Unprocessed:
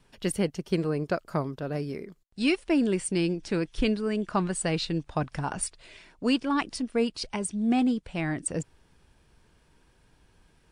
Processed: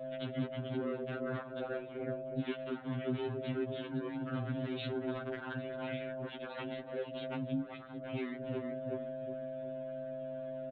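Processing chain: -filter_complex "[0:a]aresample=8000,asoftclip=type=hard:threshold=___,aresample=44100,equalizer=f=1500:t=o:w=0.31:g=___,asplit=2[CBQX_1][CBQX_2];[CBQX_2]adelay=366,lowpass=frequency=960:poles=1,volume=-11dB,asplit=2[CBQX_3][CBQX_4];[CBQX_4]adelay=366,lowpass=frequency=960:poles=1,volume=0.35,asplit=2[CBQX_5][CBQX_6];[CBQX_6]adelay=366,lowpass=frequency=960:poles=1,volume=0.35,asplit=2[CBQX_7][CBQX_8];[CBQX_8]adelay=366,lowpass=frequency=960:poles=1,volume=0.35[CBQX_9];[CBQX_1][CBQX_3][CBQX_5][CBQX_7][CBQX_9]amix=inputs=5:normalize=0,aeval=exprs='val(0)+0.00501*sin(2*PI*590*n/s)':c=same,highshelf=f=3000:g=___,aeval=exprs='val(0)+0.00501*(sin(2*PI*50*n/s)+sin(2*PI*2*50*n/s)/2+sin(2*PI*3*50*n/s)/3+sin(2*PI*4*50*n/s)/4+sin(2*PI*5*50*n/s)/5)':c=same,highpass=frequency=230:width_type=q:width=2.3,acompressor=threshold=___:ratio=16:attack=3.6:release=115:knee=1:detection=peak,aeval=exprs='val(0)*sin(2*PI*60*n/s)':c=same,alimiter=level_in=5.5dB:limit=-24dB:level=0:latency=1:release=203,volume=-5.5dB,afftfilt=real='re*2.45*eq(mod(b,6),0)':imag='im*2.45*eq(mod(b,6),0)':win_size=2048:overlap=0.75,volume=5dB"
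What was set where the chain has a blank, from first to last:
-29dB, 8.5, 4, -33dB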